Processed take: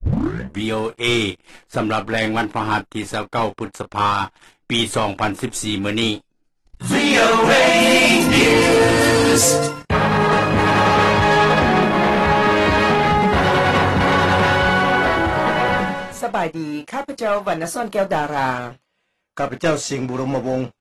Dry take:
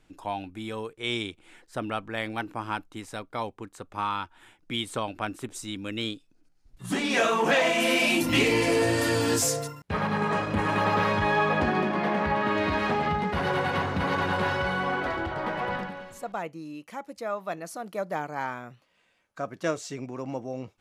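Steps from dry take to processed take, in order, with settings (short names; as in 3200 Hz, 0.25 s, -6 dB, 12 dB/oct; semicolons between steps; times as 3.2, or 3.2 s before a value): tape start at the beginning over 0.63 s; sample leveller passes 3; doubler 31 ms -11 dB; gain +1.5 dB; AAC 32 kbps 44100 Hz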